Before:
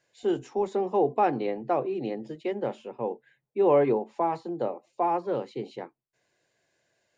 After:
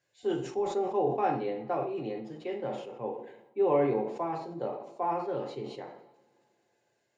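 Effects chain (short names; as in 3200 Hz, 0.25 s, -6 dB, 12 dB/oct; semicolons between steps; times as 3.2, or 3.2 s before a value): two-slope reverb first 0.47 s, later 3.4 s, from -28 dB, DRR 0.5 dB; sustainer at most 70 dB/s; gain -7.5 dB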